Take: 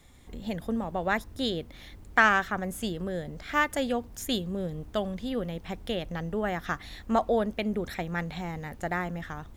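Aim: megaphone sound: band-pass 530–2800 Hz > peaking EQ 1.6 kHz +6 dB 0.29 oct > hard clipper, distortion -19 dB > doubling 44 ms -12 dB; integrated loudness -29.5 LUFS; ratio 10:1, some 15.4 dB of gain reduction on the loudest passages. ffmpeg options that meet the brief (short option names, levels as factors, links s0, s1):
-filter_complex "[0:a]acompressor=threshold=0.0282:ratio=10,highpass=530,lowpass=2800,equalizer=f=1600:t=o:w=0.29:g=6,asoftclip=type=hard:threshold=0.0562,asplit=2[s0][s1];[s1]adelay=44,volume=0.251[s2];[s0][s2]amix=inputs=2:normalize=0,volume=3.35"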